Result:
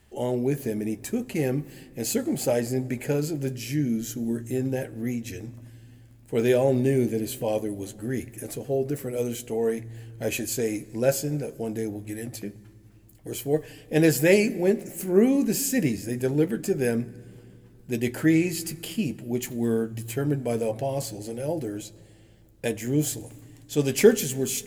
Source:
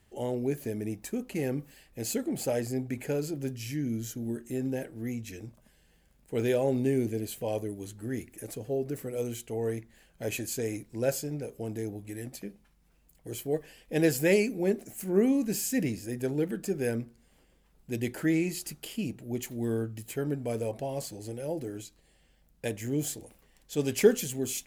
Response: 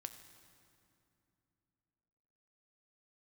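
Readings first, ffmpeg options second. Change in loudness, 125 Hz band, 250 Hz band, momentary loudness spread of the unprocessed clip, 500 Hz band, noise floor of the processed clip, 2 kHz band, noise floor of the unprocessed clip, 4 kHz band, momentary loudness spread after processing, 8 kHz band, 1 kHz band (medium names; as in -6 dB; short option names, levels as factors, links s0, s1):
+5.5 dB, +5.5 dB, +5.5 dB, 12 LU, +5.5 dB, -52 dBFS, +5.5 dB, -65 dBFS, +5.5 dB, 13 LU, +5.5 dB, +5.5 dB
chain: -filter_complex "[0:a]asplit=2[s0][s1];[1:a]atrim=start_sample=2205,lowshelf=f=140:g=7,adelay=13[s2];[s1][s2]afir=irnorm=-1:irlink=0,volume=0.447[s3];[s0][s3]amix=inputs=2:normalize=0,volume=1.78"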